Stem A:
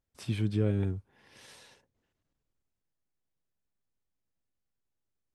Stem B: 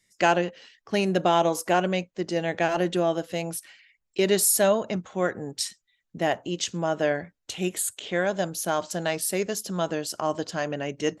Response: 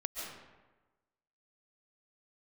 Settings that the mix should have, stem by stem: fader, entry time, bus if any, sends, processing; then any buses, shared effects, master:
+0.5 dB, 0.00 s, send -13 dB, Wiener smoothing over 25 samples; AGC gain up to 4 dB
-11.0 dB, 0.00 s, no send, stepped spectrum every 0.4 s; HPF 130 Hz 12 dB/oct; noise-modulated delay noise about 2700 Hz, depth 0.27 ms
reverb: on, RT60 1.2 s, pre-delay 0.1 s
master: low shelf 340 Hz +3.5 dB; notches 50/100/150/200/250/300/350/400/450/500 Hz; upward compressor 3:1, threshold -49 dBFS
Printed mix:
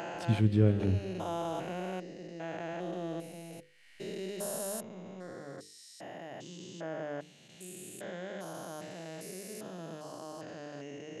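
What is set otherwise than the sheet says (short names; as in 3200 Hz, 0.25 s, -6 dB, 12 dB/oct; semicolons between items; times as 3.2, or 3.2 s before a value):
stem A: missing AGC gain up to 4 dB; stem B: missing noise-modulated delay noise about 2700 Hz, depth 0.27 ms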